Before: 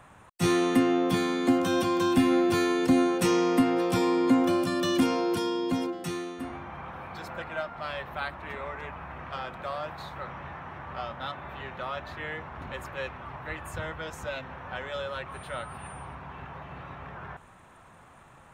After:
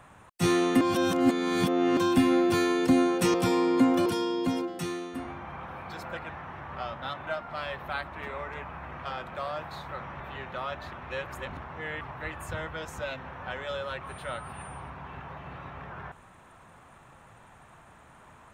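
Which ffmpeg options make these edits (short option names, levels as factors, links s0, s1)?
-filter_complex "[0:a]asplit=10[s0][s1][s2][s3][s4][s5][s6][s7][s8][s9];[s0]atrim=end=0.812[s10];[s1]atrim=start=0.808:end=1.972,asetpts=PTS-STARTPTS,areverse[s11];[s2]atrim=start=1.968:end=3.342[s12];[s3]atrim=start=3.838:end=4.562[s13];[s4]atrim=start=5.308:end=7.542[s14];[s5]atrim=start=10.468:end=11.452[s15];[s6]atrim=start=7.538:end=10.472[s16];[s7]atrim=start=11.448:end=12.182[s17];[s8]atrim=start=12.178:end=13.262,asetpts=PTS-STARTPTS,areverse[s18];[s9]atrim=start=13.258[s19];[s10][s11]acrossfade=d=0.004:c1=hsin:c2=hsin[s20];[s20][s12]acrossfade=d=0.004:c1=hsin:c2=hsin[s21];[s21][s13]acrossfade=d=0.004:c1=hsin:c2=hsin[s22];[s22][s14]acrossfade=d=0.004:c1=hsin:c2=hsin[s23];[s23][s15]acrossfade=d=0.004:c1=hsin:c2=hsin[s24];[s24][s16]acrossfade=d=0.004:c1=hsin:c2=hsin[s25];[s25][s17]acrossfade=d=0.004:c1=hsin:c2=hsin[s26];[s26][s18]acrossfade=d=0.004:c1=hsin:c2=hsin[s27];[s27][s19]acrossfade=d=0.004:c1=hsin:c2=hsin"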